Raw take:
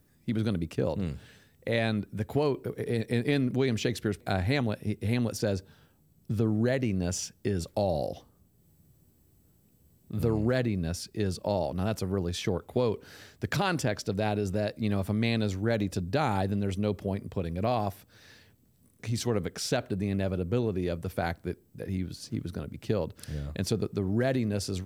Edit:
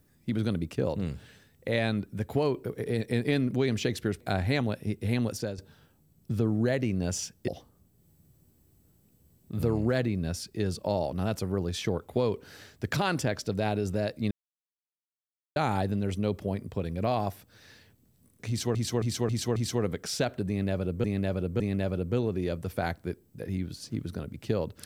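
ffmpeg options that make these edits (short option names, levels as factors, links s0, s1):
-filter_complex "[0:a]asplit=11[s0][s1][s2][s3][s4][s5][s6][s7][s8][s9][s10];[s0]atrim=end=5.58,asetpts=PTS-STARTPTS,afade=t=out:st=5.32:d=0.26:silence=0.237137[s11];[s1]atrim=start=5.58:end=7.482,asetpts=PTS-STARTPTS,afade=t=in:d=0.004:c=hsin:silence=0.237137[s12];[s2]atrim=start=8.078:end=14.91,asetpts=PTS-STARTPTS,afade=t=out:st=6.828:d=0.004:c=hsin[s13];[s3]atrim=start=14.91:end=16.16,asetpts=PTS-STARTPTS,volume=0[s14];[s4]atrim=start=16.16:end=19.352,asetpts=PTS-STARTPTS,afade=t=in:d=0.004:c=hsin[s15];[s5]atrim=start=19.078:end=19.352[s16];[s6]atrim=start=19.078:end=19.352[s17];[s7]atrim=start=19.078:end=19.352[s18];[s8]atrim=start=19.078:end=20.562[s19];[s9]atrim=start=19.998:end=20.562[s20];[s10]atrim=start=19.998[s21];[s11][s12]concat=n=2:v=0:a=1[s22];[s13][s14][s15]concat=n=3:v=0:a=1[s23];[s22][s23]acrossfade=d=0.004:c1=hsin:c2=hsin[s24];[s24][s16]acrossfade=d=0.004:c1=hsin:c2=hsin[s25];[s25][s17]acrossfade=d=0.004:c1=hsin:c2=hsin[s26];[s26][s18]acrossfade=d=0.004:c1=hsin:c2=hsin[s27];[s27][s19]acrossfade=d=0.004:c1=hsin:c2=hsin[s28];[s28][s20]acrossfade=d=0.004:c1=hsin:c2=hsin[s29];[s29][s21]acrossfade=d=0.004:c1=hsin:c2=hsin"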